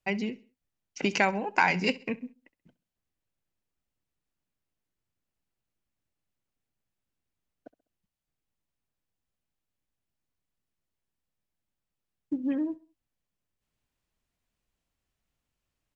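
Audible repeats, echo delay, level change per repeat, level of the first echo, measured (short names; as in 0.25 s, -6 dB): 2, 66 ms, -8.0 dB, -20.5 dB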